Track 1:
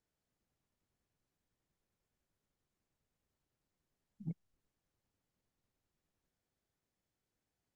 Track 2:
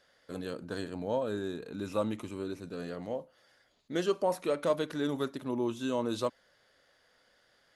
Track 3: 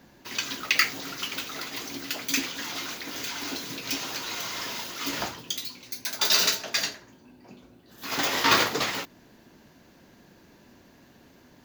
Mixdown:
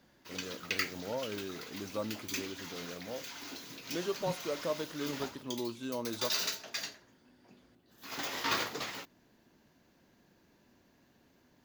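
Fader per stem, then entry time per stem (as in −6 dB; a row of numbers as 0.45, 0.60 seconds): 0.0, −6.0, −11.5 decibels; 0.00, 0.00, 0.00 seconds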